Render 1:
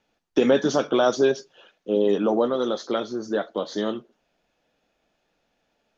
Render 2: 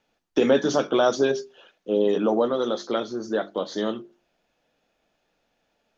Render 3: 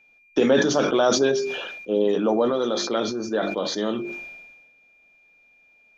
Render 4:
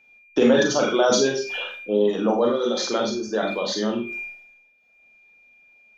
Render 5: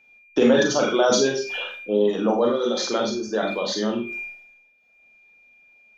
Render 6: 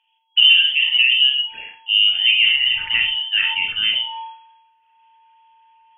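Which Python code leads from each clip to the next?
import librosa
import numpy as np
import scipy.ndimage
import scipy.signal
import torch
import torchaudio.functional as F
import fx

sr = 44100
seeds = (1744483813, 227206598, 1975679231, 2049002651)

y1 = fx.hum_notches(x, sr, base_hz=50, count=8)
y2 = y1 + 10.0 ** (-55.0 / 20.0) * np.sin(2.0 * np.pi * 2400.0 * np.arange(len(y1)) / sr)
y2 = fx.sustainer(y2, sr, db_per_s=40.0)
y3 = fx.dereverb_blind(y2, sr, rt60_s=0.97)
y3 = fx.doubler(y3, sr, ms=42.0, db=-13.0)
y3 = fx.rev_schroeder(y3, sr, rt60_s=0.31, comb_ms=30, drr_db=2.5)
y4 = y3
y5 = fx.filter_sweep_lowpass(y4, sr, from_hz=650.0, to_hz=1900.0, start_s=1.35, end_s=2.88, q=0.78)
y5 = fx.freq_invert(y5, sr, carrier_hz=3300)
y5 = fx.doubler(y5, sr, ms=38.0, db=-13)
y5 = y5 * librosa.db_to_amplitude(5.0)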